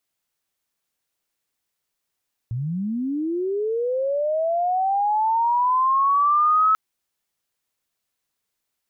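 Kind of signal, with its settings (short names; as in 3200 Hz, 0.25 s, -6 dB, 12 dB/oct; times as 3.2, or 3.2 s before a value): chirp linear 110 Hz -> 1300 Hz -23.5 dBFS -> -14 dBFS 4.24 s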